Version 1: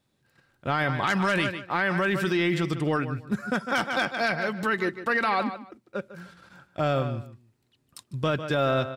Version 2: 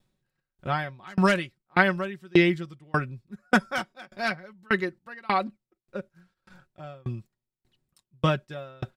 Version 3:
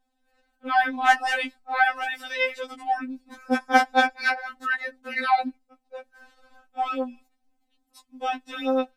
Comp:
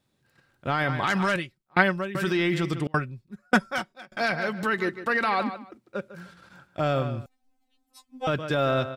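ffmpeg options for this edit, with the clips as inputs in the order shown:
-filter_complex "[1:a]asplit=2[a][b];[0:a]asplit=4[c][d][e][f];[c]atrim=end=1.362[g];[a]atrim=start=1.358:end=2.152[h];[d]atrim=start=2.148:end=2.872[i];[b]atrim=start=2.868:end=4.172[j];[e]atrim=start=4.168:end=7.262[k];[2:a]atrim=start=7.258:end=8.272[l];[f]atrim=start=8.268[m];[g][h]acrossfade=d=0.004:c1=hsin:c2=hsin[n];[n][i]acrossfade=d=0.004:c1=hsin:c2=hsin[o];[o][j]acrossfade=d=0.004:c1=hsin:c2=hsin[p];[p][k]acrossfade=d=0.004:c1=hsin:c2=hsin[q];[q][l]acrossfade=d=0.004:c1=hsin:c2=hsin[r];[r][m]acrossfade=d=0.004:c1=hsin:c2=hsin"

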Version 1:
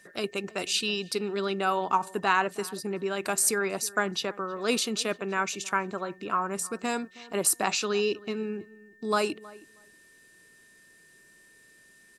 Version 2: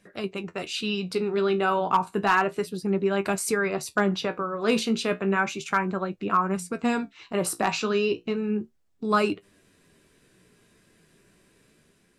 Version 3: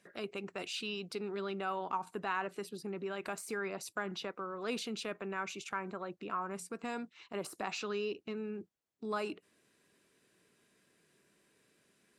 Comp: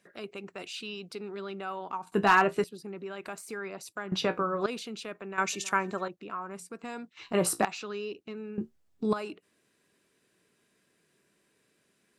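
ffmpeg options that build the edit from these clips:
-filter_complex "[1:a]asplit=4[a][b][c][d];[2:a]asplit=6[e][f][g][h][i][j];[e]atrim=end=2.122[k];[a]atrim=start=2.118:end=2.642[l];[f]atrim=start=2.638:end=4.122[m];[b]atrim=start=4.118:end=4.662[n];[g]atrim=start=4.658:end=5.382[o];[0:a]atrim=start=5.378:end=6.082[p];[h]atrim=start=6.078:end=7.172[q];[c]atrim=start=7.168:end=7.652[r];[i]atrim=start=7.648:end=8.582[s];[d]atrim=start=8.578:end=9.132[t];[j]atrim=start=9.128[u];[k][l]acrossfade=d=0.004:c1=hsin:c2=hsin[v];[v][m]acrossfade=d=0.004:c1=hsin:c2=hsin[w];[w][n]acrossfade=d=0.004:c1=hsin:c2=hsin[x];[x][o]acrossfade=d=0.004:c1=hsin:c2=hsin[y];[y][p]acrossfade=d=0.004:c1=hsin:c2=hsin[z];[z][q]acrossfade=d=0.004:c1=hsin:c2=hsin[aa];[aa][r]acrossfade=d=0.004:c1=hsin:c2=hsin[ab];[ab][s]acrossfade=d=0.004:c1=hsin:c2=hsin[ac];[ac][t]acrossfade=d=0.004:c1=hsin:c2=hsin[ad];[ad][u]acrossfade=d=0.004:c1=hsin:c2=hsin"

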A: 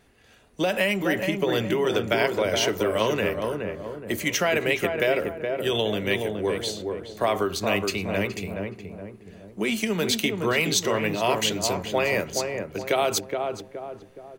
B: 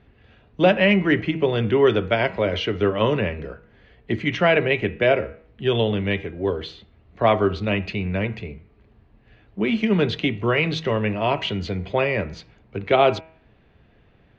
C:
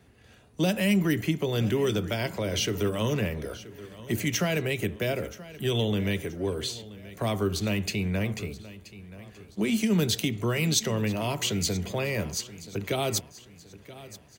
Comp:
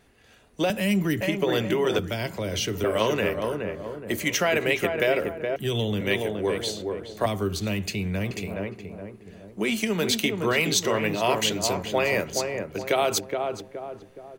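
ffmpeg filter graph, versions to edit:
-filter_complex "[2:a]asplit=4[a][b][c][d];[0:a]asplit=5[e][f][g][h][i];[e]atrim=end=0.702[j];[a]atrim=start=0.698:end=1.212[k];[f]atrim=start=1.208:end=1.992[l];[b]atrim=start=1.988:end=2.842[m];[g]atrim=start=2.838:end=5.562[n];[c]atrim=start=5.558:end=6.012[o];[h]atrim=start=6.008:end=7.262[p];[d]atrim=start=7.258:end=8.312[q];[i]atrim=start=8.308[r];[j][k]acrossfade=d=0.004:c1=hsin:c2=hsin[s];[s][l]acrossfade=d=0.004:c1=hsin:c2=hsin[t];[t][m]acrossfade=d=0.004:c1=hsin:c2=hsin[u];[u][n]acrossfade=d=0.004:c1=hsin:c2=hsin[v];[v][o]acrossfade=d=0.004:c1=hsin:c2=hsin[w];[w][p]acrossfade=d=0.004:c1=hsin:c2=hsin[x];[x][q]acrossfade=d=0.004:c1=hsin:c2=hsin[y];[y][r]acrossfade=d=0.004:c1=hsin:c2=hsin"

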